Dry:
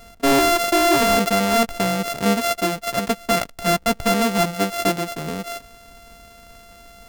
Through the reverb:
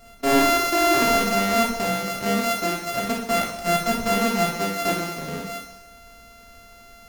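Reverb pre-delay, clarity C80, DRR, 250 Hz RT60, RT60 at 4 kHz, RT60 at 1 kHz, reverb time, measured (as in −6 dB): 5 ms, 6.5 dB, −2.0 dB, 0.90 s, 0.80 s, 0.85 s, 0.85 s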